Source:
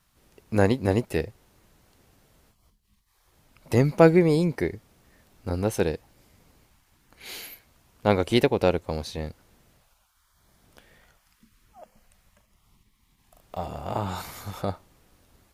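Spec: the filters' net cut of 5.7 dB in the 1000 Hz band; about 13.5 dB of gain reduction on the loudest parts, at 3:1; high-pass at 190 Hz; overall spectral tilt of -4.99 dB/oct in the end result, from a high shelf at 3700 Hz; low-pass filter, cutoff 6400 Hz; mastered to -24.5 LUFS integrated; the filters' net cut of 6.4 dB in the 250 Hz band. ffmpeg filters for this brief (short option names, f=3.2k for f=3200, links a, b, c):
-af "highpass=190,lowpass=6.4k,equalizer=f=250:t=o:g=-7,equalizer=f=1k:t=o:g=-7,highshelf=f=3.7k:g=-9,acompressor=threshold=-32dB:ratio=3,volume=13.5dB"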